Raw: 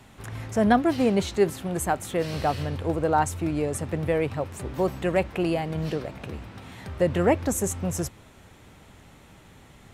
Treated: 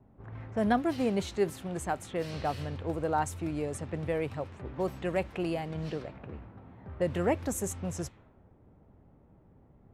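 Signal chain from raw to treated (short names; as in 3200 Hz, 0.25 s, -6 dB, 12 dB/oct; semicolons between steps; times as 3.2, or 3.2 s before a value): low-pass opened by the level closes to 550 Hz, open at -22.5 dBFS; gain -7 dB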